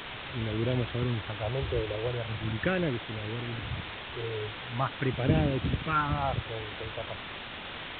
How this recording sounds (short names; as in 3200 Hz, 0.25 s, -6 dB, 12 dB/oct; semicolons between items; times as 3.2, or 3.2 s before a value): phasing stages 4, 0.41 Hz, lowest notch 220–1200 Hz; a quantiser's noise floor 6-bit, dither triangular; G.726